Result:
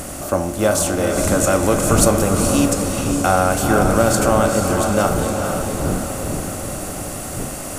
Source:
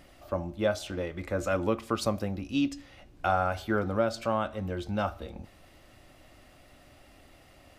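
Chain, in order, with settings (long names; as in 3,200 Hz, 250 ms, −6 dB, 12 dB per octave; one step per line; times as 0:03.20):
compressor on every frequency bin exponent 0.6
wind on the microphone 240 Hz −35 dBFS
high shelf with overshoot 5,700 Hz +14 dB, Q 1.5
notch filter 5,000 Hz, Q 27
feedback delay with all-pass diffusion 451 ms, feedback 55%, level −4 dB
level +8 dB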